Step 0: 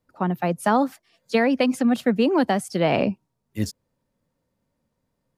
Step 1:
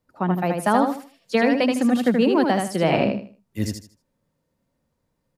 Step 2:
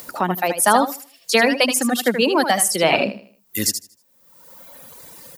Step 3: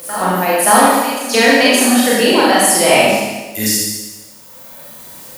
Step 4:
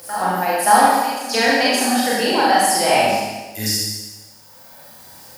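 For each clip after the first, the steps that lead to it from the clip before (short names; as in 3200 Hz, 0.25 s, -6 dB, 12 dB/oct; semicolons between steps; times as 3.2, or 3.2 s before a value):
feedback echo 78 ms, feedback 27%, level -4.5 dB
reverb removal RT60 1.3 s; RIAA curve recording; upward compressor, threshold -25 dBFS; gain +6 dB
reverse echo 0.571 s -13 dB; Schroeder reverb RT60 1.2 s, combs from 29 ms, DRR -7 dB; requantised 8-bit, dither triangular; gain -1 dB
thirty-one-band EQ 100 Hz +11 dB, 800 Hz +10 dB, 1600 Hz +6 dB, 5000 Hz +9 dB; gain -8 dB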